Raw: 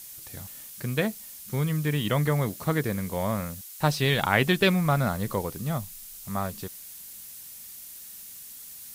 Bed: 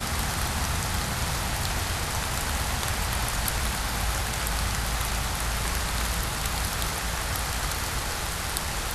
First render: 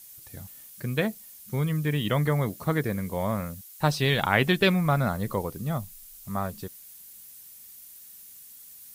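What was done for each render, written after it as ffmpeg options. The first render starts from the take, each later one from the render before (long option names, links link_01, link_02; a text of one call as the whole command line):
ffmpeg -i in.wav -af "afftdn=noise_reduction=7:noise_floor=-44" out.wav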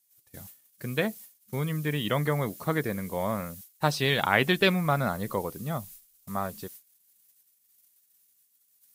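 ffmpeg -i in.wav -af "agate=range=-22dB:threshold=-44dB:ratio=16:detection=peak,lowshelf=frequency=110:gain=-11.5" out.wav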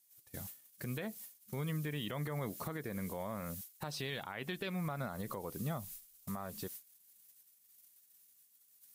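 ffmpeg -i in.wav -af "acompressor=threshold=-33dB:ratio=6,alimiter=level_in=6dB:limit=-24dB:level=0:latency=1:release=81,volume=-6dB" out.wav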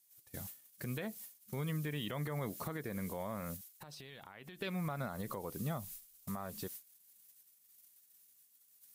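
ffmpeg -i in.wav -filter_complex "[0:a]asettb=1/sr,asplit=3[link_01][link_02][link_03];[link_01]atrim=end=3.564[link_04];[link_02]atrim=start=3.56:end=4.62,asetpts=PTS-STARTPTS,afade=type=in:duration=0.004:curve=qsin,afade=type=out:start_time=1.056:duration=0.004:curve=qsin,acompressor=threshold=-47dB:ratio=16:attack=3.2:release=140:knee=1:detection=peak[link_05];[link_03]atrim=start=4.616[link_06];[link_04][link_05]acrossfade=duration=0.004:curve1=hsin:curve2=qsin[link_07];[link_07][link_06]acrossfade=duration=0.004:curve1=qsin:curve2=hsin" out.wav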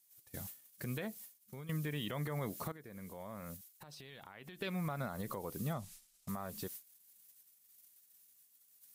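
ffmpeg -i in.wav -filter_complex "[0:a]asettb=1/sr,asplit=3[link_01][link_02][link_03];[link_01]atrim=end=5.734[link_04];[link_02]atrim=start=5.73:end=6.29,asetpts=PTS-STARTPTS,afade=type=in:duration=0.004:curve=qsin,afade=type=out:start_time=0.556:duration=0.004:curve=qsin,lowpass=8900[link_05];[link_03]atrim=start=6.286[link_06];[link_04][link_05]acrossfade=duration=0.004:curve1=hsin:curve2=qsin[link_07];[link_07][link_06]acrossfade=duration=0.004:curve1=qsin:curve2=hsin,asplit=3[link_08][link_09][link_10];[link_08]atrim=end=1.69,asetpts=PTS-STARTPTS,afade=type=out:start_time=1.03:duration=0.66:silence=0.237137[link_11];[link_09]atrim=start=1.69:end=2.72,asetpts=PTS-STARTPTS,afade=type=in:duration=0.004:curve=hsin:silence=0.237137,afade=type=out:start_time=1.026:duration=0.004:curve=hsin:silence=0.223872[link_12];[link_10]atrim=start=2.72,asetpts=PTS-STARTPTS,afade=type=in:duration=1.6:silence=0.223872[link_13];[link_11][link_12][link_13]concat=n=3:v=0:a=1" out.wav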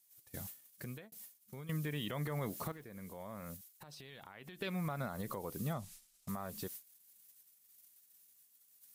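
ffmpeg -i in.wav -filter_complex "[0:a]asettb=1/sr,asplit=3[link_01][link_02][link_03];[link_01]atrim=end=2.214[link_04];[link_02]atrim=start=2.21:end=2.84,asetpts=PTS-STARTPTS,afade=type=in:duration=0.004:curve=qsin,afade=type=out:start_time=0.626:duration=0.004:curve=qsin,aeval=exprs='val(0)+0.5*0.00133*sgn(val(0))':channel_layout=same[link_05];[link_03]atrim=start=2.836[link_06];[link_04][link_05]acrossfade=duration=0.004:curve1=hsin:curve2=qsin[link_07];[link_07][link_06]acrossfade=duration=0.004:curve1=qsin:curve2=hsin,asplit=2[link_08][link_09];[link_08]atrim=end=1.12,asetpts=PTS-STARTPTS,afade=type=out:start_time=0.72:duration=0.4[link_10];[link_09]atrim=start=1.12,asetpts=PTS-STARTPTS,afade=type=in:duration=0.004:curve=hsin[link_11];[link_10][link_11]concat=n=2:v=0:a=1" out.wav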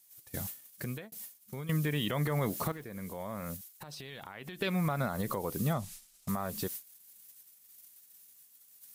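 ffmpeg -i in.wav -af "volume=7.5dB" out.wav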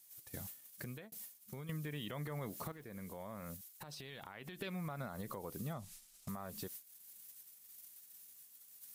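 ffmpeg -i in.wav -af "acompressor=threshold=-50dB:ratio=2" out.wav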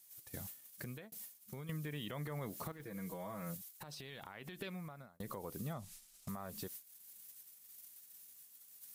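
ffmpeg -i in.wav -filter_complex "[0:a]asettb=1/sr,asplit=3[link_01][link_02][link_03];[link_01]atrim=end=2.794[link_04];[link_02]atrim=start=2.79:end=3.71,asetpts=PTS-STARTPTS,afade=type=in:duration=0.004:curve=qsin,afade=type=out:start_time=0.916:duration=0.004:curve=qsin,aecho=1:1:6.2:0.95,atrim=end_sample=40572[link_05];[link_03]atrim=start=3.706[link_06];[link_04][link_05]acrossfade=duration=0.004:curve1=hsin:curve2=qsin[link_07];[link_07][link_06]acrossfade=duration=0.004:curve1=qsin:curve2=hsin,asplit=2[link_08][link_09];[link_08]atrim=end=5.2,asetpts=PTS-STARTPTS,afade=type=out:start_time=4.55:duration=0.65[link_10];[link_09]atrim=start=5.2,asetpts=PTS-STARTPTS,afade=type=in:duration=0.004:curve=hsin[link_11];[link_10][link_11]concat=n=2:v=0:a=1" out.wav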